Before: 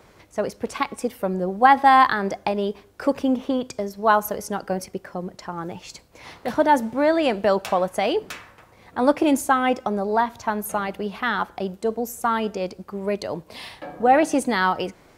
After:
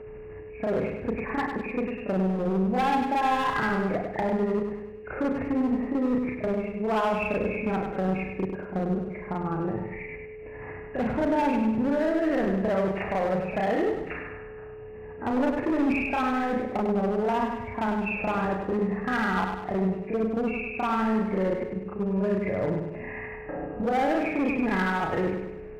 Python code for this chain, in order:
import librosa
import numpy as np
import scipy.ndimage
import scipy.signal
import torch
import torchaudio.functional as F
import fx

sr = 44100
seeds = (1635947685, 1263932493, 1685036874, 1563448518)

p1 = fx.freq_compress(x, sr, knee_hz=1600.0, ratio=4.0)
p2 = fx.tilt_eq(p1, sr, slope=-3.0)
p3 = fx.notch(p2, sr, hz=1100.0, q=30.0)
p4 = fx.over_compress(p3, sr, threshold_db=-21.0, ratio=-0.5)
p5 = p3 + (p4 * 10.0 ** (-2.0 / 20.0))
p6 = fx.stretch_grains(p5, sr, factor=1.7, grain_ms=155.0)
p7 = np.clip(10.0 ** (13.5 / 20.0) * p6, -1.0, 1.0) / 10.0 ** (13.5 / 20.0)
p8 = fx.echo_feedback(p7, sr, ms=100, feedback_pct=49, wet_db=-6.0)
p9 = p8 + 10.0 ** (-31.0 / 20.0) * np.sin(2.0 * np.pi * 430.0 * np.arange(len(p8)) / sr)
y = p9 * 10.0 ** (-8.5 / 20.0)